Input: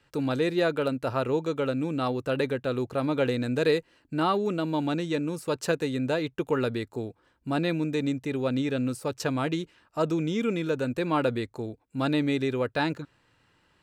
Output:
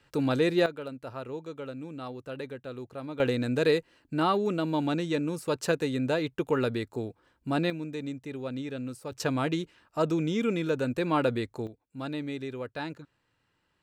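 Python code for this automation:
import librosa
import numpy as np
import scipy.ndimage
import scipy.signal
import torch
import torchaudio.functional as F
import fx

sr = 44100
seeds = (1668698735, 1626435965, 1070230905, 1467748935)

y = fx.gain(x, sr, db=fx.steps((0.0, 1.0), (0.66, -11.0), (3.2, -0.5), (7.7, -8.0), (9.12, -0.5), (11.67, -9.0)))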